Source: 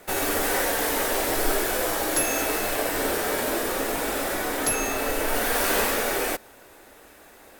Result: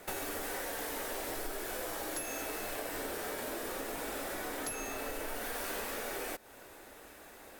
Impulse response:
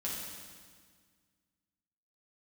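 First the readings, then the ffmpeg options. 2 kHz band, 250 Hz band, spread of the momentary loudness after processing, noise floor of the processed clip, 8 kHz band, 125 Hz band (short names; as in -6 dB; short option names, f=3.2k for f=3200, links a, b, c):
-13.5 dB, -13.5 dB, 14 LU, -54 dBFS, -14.0 dB, -13.5 dB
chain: -af "acompressor=threshold=-34dB:ratio=5,volume=-3dB"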